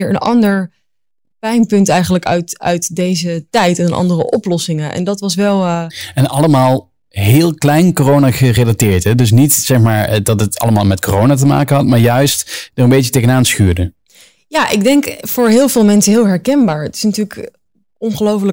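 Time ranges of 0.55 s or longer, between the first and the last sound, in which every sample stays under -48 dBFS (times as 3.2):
0.69–1.43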